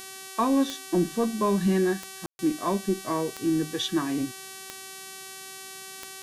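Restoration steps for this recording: de-click; de-hum 382.6 Hz, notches 32; room tone fill 2.26–2.39; expander -34 dBFS, range -21 dB

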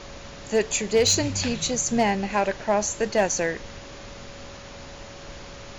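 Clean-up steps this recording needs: clip repair -13 dBFS; notch 560 Hz, Q 30; noise print and reduce 28 dB

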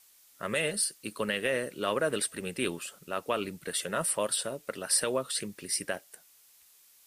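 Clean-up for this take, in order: denoiser 17 dB, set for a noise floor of -60 dBFS

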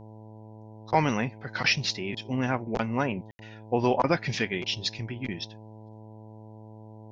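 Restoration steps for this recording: de-hum 108.7 Hz, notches 9; room tone fill 3.31–3.39

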